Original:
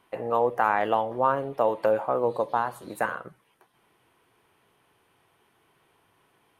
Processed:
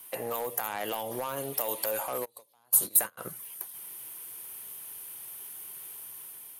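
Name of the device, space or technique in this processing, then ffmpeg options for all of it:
FM broadcast chain: -filter_complex "[0:a]highpass=f=74:w=0.5412,highpass=f=74:w=1.3066,dynaudnorm=f=310:g=5:m=5dB,acrossover=split=700|2200[a][b][c];[a]acompressor=threshold=-32dB:ratio=4[d];[b]acompressor=threshold=-35dB:ratio=4[e];[c]acompressor=threshold=-46dB:ratio=4[f];[d][e][f]amix=inputs=3:normalize=0,aemphasis=mode=production:type=75fm,alimiter=limit=-22.5dB:level=0:latency=1:release=85,asoftclip=type=hard:threshold=-26.5dB,lowpass=f=15k:w=0.5412,lowpass=f=15k:w=1.3066,aemphasis=mode=production:type=75fm,asplit=3[g][h][i];[g]afade=t=out:st=2.24:d=0.02[j];[h]agate=range=-31dB:threshold=-27dB:ratio=16:detection=peak,afade=t=in:st=2.24:d=0.02,afade=t=out:st=3.17:d=0.02[k];[i]afade=t=in:st=3.17:d=0.02[l];[j][k][l]amix=inputs=3:normalize=0"

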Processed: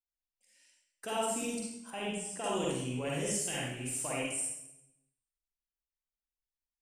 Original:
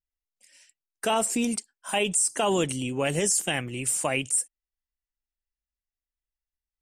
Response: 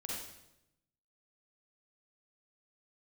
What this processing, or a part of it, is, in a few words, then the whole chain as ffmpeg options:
bathroom: -filter_complex "[1:a]atrim=start_sample=2205[a];[0:a][a]afir=irnorm=-1:irlink=0,asettb=1/sr,asplit=3[b][c][d];[b]atrim=end=1.904[e];[c]atrim=start=1.9:end=2.44,asetpts=PTS-STARTPTS,afade=t=in:d=0.004:c=qsin,afade=t=out:st=0.536:d=0.004:c=qsin,highshelf=f=3.6k:g=-10[f];[d]atrim=start=2.436[g];[e][f]acrossfade=d=0.004:c1=hsin:c2=qsin[h];[h][g]acrossfade=d=0.004:c1=qsin:c2=hsin,volume=-9dB"

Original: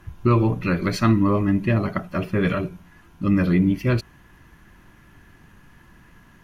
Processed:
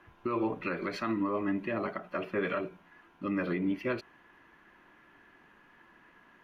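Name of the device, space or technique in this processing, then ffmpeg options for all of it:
DJ mixer with the lows and highs turned down: -filter_complex "[0:a]acrossover=split=270 3500:gain=0.0794 1 0.158[a][b][c];[a][b][c]amix=inputs=3:normalize=0,alimiter=limit=-18.5dB:level=0:latency=1:release=105,volume=-3.5dB"

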